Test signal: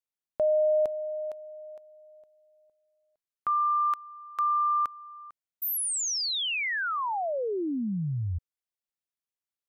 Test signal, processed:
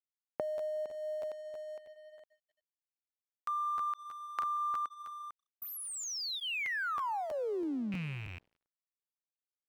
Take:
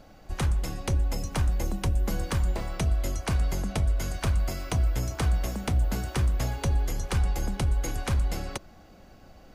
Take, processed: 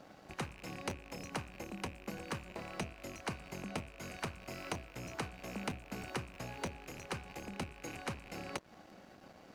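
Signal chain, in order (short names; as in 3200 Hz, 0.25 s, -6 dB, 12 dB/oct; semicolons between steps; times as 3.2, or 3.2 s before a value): rattling part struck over -33 dBFS, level -28 dBFS; compressor 8:1, threshold -35 dBFS; HPF 160 Hz 12 dB/oct; high shelf 6200 Hz -9 dB; notch 3400 Hz, Q 12; tape echo 0.184 s, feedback 77%, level -24 dB, low-pass 1900 Hz; crossover distortion -60 dBFS; dynamic EQ 660 Hz, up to -5 dB, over -49 dBFS, Q 6.9; crackling interface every 0.32 s, samples 512, repeat, from 0.57; gain +2.5 dB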